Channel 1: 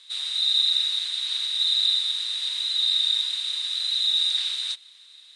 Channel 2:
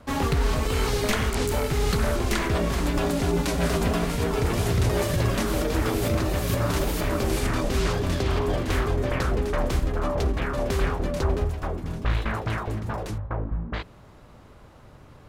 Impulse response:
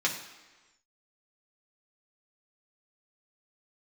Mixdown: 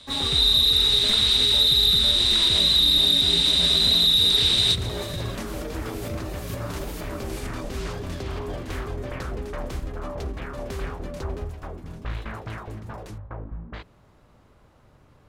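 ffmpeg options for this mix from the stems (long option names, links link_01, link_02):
-filter_complex "[0:a]bandreject=frequency=6600:width=20,dynaudnorm=framelen=160:gausssize=5:maxgain=10dB,asoftclip=type=tanh:threshold=-9dB,volume=2.5dB[link_01];[1:a]volume=-7dB[link_02];[link_01][link_02]amix=inputs=2:normalize=0,acrossover=split=350[link_03][link_04];[link_04]acompressor=threshold=-16dB:ratio=6[link_05];[link_03][link_05]amix=inputs=2:normalize=0"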